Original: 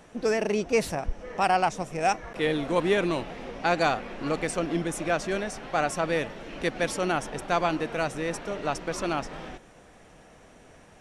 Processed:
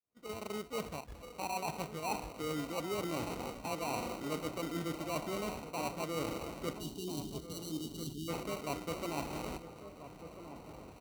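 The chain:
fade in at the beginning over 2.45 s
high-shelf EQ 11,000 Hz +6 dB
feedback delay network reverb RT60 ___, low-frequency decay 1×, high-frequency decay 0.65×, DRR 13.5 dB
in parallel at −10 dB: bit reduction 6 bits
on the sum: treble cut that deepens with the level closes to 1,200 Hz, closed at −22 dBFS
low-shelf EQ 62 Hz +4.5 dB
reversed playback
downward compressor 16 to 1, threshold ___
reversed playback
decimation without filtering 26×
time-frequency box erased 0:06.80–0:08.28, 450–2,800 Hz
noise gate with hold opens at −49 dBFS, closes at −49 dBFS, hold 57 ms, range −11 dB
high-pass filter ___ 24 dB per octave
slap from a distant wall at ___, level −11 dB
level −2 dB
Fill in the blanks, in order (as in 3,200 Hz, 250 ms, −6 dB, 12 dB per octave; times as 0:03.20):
0.98 s, −32 dBFS, 47 Hz, 230 metres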